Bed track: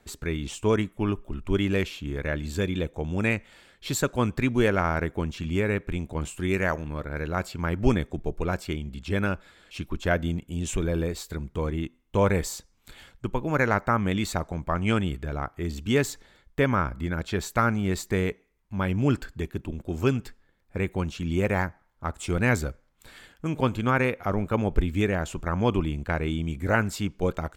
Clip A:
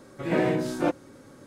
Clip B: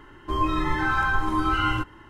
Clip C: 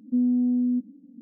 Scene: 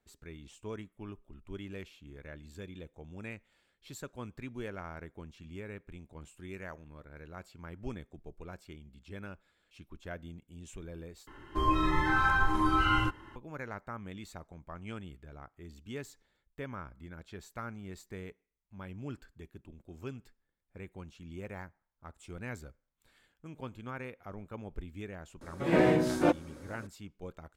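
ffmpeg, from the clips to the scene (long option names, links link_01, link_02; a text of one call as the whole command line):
ffmpeg -i bed.wav -i cue0.wav -i cue1.wav -filter_complex "[0:a]volume=-18.5dB,asplit=2[link_01][link_02];[link_01]atrim=end=11.274[link_03];[2:a]atrim=end=2.09,asetpts=PTS-STARTPTS,volume=-3.5dB[link_04];[link_02]atrim=start=13.356[link_05];[1:a]atrim=end=1.46,asetpts=PTS-STARTPTS,volume=-0.5dB,afade=type=in:duration=0.004:curve=hsin,afade=type=out:start_time=1.456:duration=0.004:curve=hsin,adelay=25410[link_06];[link_03][link_04]acrossfade=duration=0.004:curve1=hsin:curve2=hsin[link_07];[link_07][link_05]acrossfade=duration=0.004:curve1=hsin:curve2=hsin[link_08];[link_08][link_06]amix=inputs=2:normalize=0" out.wav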